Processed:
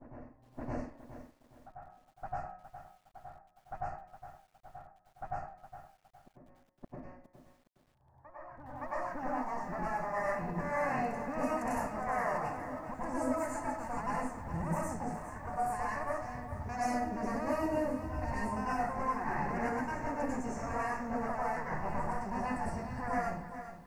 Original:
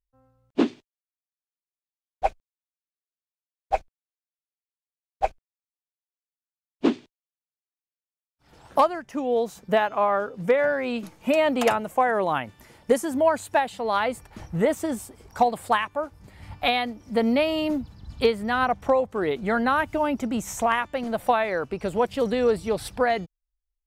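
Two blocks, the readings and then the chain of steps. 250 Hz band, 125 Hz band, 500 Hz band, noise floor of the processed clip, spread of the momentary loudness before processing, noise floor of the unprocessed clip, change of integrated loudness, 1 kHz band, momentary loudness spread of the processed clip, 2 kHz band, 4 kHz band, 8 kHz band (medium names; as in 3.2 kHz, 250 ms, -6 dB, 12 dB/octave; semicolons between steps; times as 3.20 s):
-10.5 dB, -3.0 dB, -14.5 dB, -69 dBFS, 8 LU, under -85 dBFS, -11.5 dB, -9.0 dB, 19 LU, -11.0 dB, -23.5 dB, -10.5 dB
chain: comb filter that takes the minimum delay 1.1 ms; Butterworth band-stop 3.4 kHz, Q 0.92; de-hum 182.6 Hz, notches 29; level-controlled noise filter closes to 1.1 kHz, open at -22.5 dBFS; compression 3:1, threshold -27 dBFS, peak gain reduction 9 dB; peak limiter -26 dBFS, peak gain reduction 11 dB; trance gate "xx.xx.xx.xxxx" 160 bpm -60 dB; reverse echo 568 ms -11.5 dB; plate-style reverb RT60 0.52 s, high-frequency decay 0.95×, pre-delay 85 ms, DRR -7 dB; level-controlled noise filter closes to 1.5 kHz, open at -22.5 dBFS; bit-crushed delay 413 ms, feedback 35%, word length 9-bit, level -11 dB; trim -7 dB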